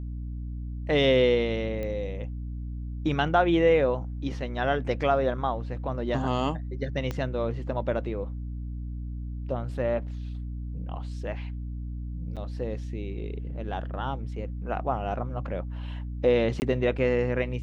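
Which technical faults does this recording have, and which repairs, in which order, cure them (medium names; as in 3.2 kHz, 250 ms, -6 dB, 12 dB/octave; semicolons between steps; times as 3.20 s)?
hum 60 Hz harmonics 5 -34 dBFS
1.83 s: pop -22 dBFS
7.11 s: pop -18 dBFS
12.36–12.37 s: dropout 7.5 ms
16.60–16.62 s: dropout 19 ms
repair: de-click; de-hum 60 Hz, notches 5; interpolate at 12.36 s, 7.5 ms; interpolate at 16.60 s, 19 ms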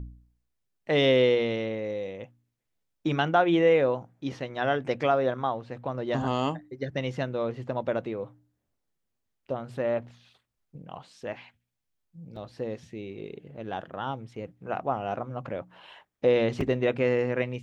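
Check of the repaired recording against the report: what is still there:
7.11 s: pop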